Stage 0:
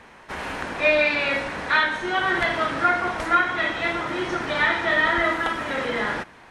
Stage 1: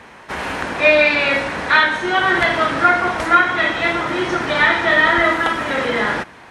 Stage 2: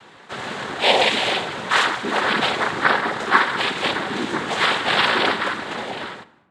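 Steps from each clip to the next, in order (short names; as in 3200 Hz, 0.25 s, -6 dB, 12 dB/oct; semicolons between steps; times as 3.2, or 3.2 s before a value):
HPF 49 Hz; gain +6.5 dB
ending faded out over 1.17 s; noise vocoder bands 6; reverb RT60 1.1 s, pre-delay 5 ms, DRR 14.5 dB; gain -4 dB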